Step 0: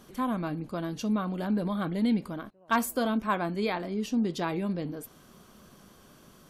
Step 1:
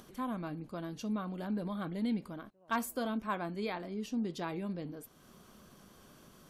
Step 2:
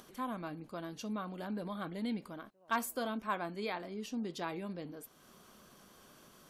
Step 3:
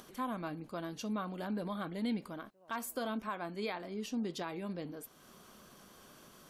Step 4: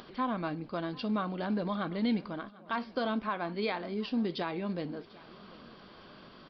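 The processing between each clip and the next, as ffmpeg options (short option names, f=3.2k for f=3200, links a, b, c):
-af "acompressor=mode=upward:threshold=-43dB:ratio=2.5,volume=-7.5dB"
-af "lowshelf=f=270:g=-8.5,volume=1dB"
-af "alimiter=level_in=5dB:limit=-24dB:level=0:latency=1:release=234,volume=-5dB,volume=2dB"
-af "acrusher=bits=8:mode=log:mix=0:aa=0.000001,aecho=1:1:745|1490|2235:0.0841|0.0337|0.0135,aresample=11025,aresample=44100,volume=5.5dB"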